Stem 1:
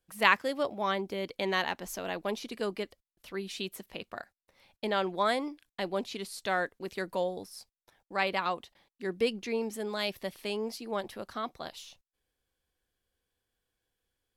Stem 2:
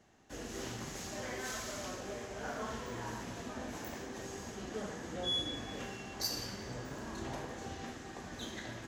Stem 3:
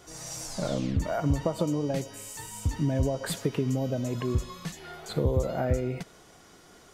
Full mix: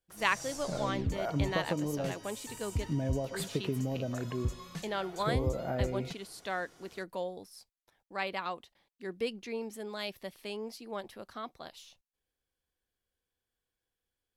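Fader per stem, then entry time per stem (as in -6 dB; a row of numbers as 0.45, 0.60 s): -5.5 dB, off, -5.5 dB; 0.00 s, off, 0.10 s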